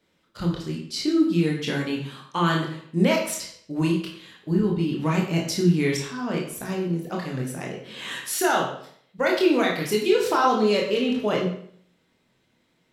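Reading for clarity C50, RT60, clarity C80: 5.0 dB, 0.60 s, 8.0 dB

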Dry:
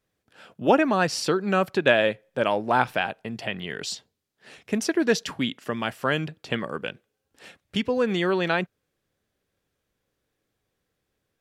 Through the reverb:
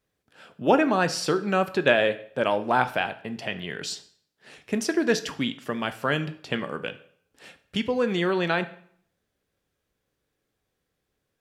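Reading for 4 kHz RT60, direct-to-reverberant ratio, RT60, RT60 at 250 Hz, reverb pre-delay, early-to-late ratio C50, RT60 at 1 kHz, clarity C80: 0.50 s, 10.5 dB, 0.60 s, 0.65 s, 8 ms, 15.0 dB, 0.65 s, 19.0 dB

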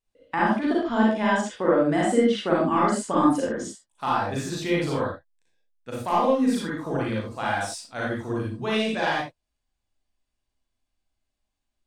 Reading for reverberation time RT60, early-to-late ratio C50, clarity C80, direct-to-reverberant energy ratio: no single decay rate, -1.0 dB, 5.5 dB, -5.5 dB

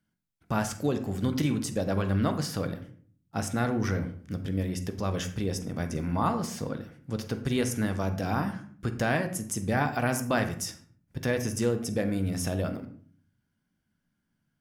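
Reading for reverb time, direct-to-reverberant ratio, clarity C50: 0.50 s, 7.0 dB, 10.5 dB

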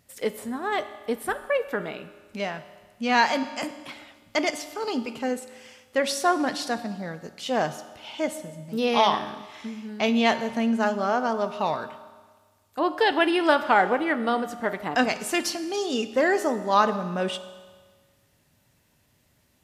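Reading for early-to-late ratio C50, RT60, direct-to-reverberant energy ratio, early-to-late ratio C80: 12.5 dB, 1.5 s, 10.5 dB, 14.0 dB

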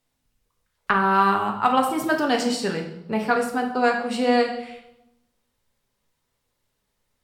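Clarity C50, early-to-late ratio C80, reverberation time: 7.5 dB, 10.5 dB, 0.90 s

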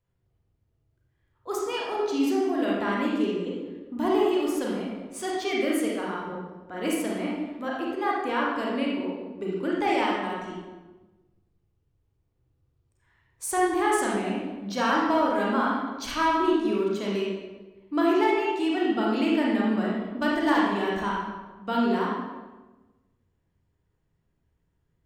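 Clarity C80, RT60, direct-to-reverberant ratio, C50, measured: 2.5 dB, 1.2 s, -4.0 dB, -0.5 dB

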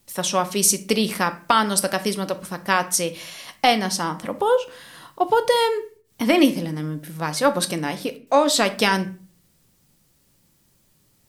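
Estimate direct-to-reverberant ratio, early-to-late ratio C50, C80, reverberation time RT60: 9.0 dB, 16.0 dB, 20.5 dB, 0.40 s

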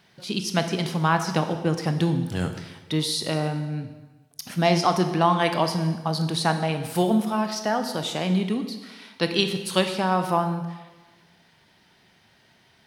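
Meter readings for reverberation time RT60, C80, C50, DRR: 1.2 s, 10.5 dB, 9.0 dB, 7.0 dB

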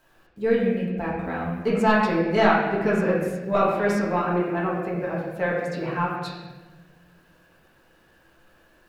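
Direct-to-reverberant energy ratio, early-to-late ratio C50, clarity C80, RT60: -7.0 dB, 1.5 dB, 3.5 dB, 1.3 s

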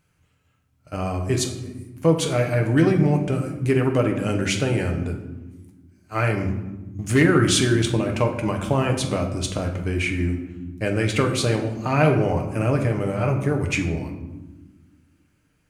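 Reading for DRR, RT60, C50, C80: 2.0 dB, 1.2 s, 7.5 dB, 10.0 dB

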